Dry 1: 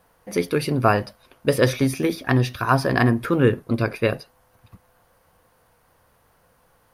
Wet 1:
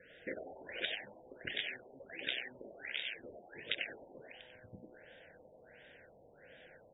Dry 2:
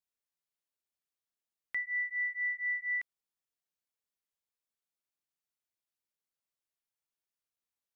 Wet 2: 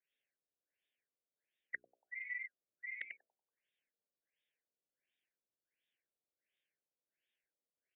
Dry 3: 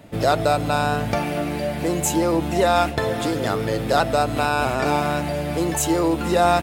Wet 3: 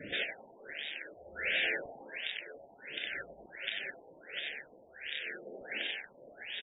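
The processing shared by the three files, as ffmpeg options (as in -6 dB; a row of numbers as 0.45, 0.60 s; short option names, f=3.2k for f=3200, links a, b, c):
-filter_complex "[0:a]aresample=16000,aeval=exprs='(mod(4.22*val(0)+1,2)-1)/4.22':c=same,aresample=44100,afftfilt=real='re*lt(hypot(re,im),0.1)':imag='im*lt(hypot(re,im),0.1)':win_size=1024:overlap=0.75,aemphasis=mode=production:type=riaa,acompressor=threshold=-32dB:ratio=8,asoftclip=type=hard:threshold=-13dB,acontrast=85,asuperstop=centerf=940:order=12:qfactor=1,highshelf=f=2.7k:g=-2.5,bandreject=f=60:t=h:w=6,bandreject=f=120:t=h:w=6,bandreject=f=180:t=h:w=6,bandreject=f=240:t=h:w=6,bandreject=f=300:t=h:w=6,bandreject=f=360:t=h:w=6,bandreject=f=420:t=h:w=6,asplit=2[a][b];[b]asplit=6[c][d][e][f][g][h];[c]adelay=94,afreqshift=120,volume=-4dB[i];[d]adelay=188,afreqshift=240,volume=-10.7dB[j];[e]adelay=282,afreqshift=360,volume=-17.5dB[k];[f]adelay=376,afreqshift=480,volume=-24.2dB[l];[g]adelay=470,afreqshift=600,volume=-31dB[m];[h]adelay=564,afreqshift=720,volume=-37.7dB[n];[i][j][k][l][m][n]amix=inputs=6:normalize=0[o];[a][o]amix=inputs=2:normalize=0,afftfilt=real='re*lt(b*sr/1024,970*pow(3800/970,0.5+0.5*sin(2*PI*1.4*pts/sr)))':imag='im*lt(b*sr/1024,970*pow(3800/970,0.5+0.5*sin(2*PI*1.4*pts/sr)))':win_size=1024:overlap=0.75"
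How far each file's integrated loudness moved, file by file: -20.5, -13.0, -17.0 LU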